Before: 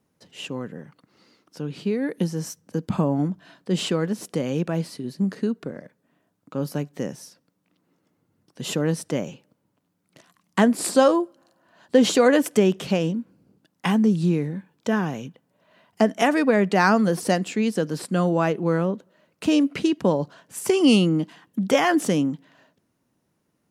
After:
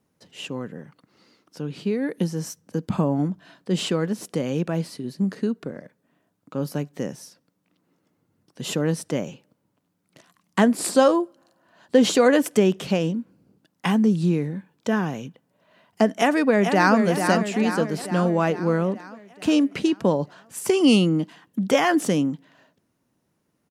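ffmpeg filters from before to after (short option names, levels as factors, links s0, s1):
-filter_complex "[0:a]asplit=2[s0][s1];[s1]afade=t=in:st=16.16:d=0.01,afade=t=out:st=16.98:d=0.01,aecho=0:1:440|880|1320|1760|2200|2640|3080|3520:0.473151|0.283891|0.170334|0.102201|0.0613204|0.0367922|0.0220753|0.0132452[s2];[s0][s2]amix=inputs=2:normalize=0"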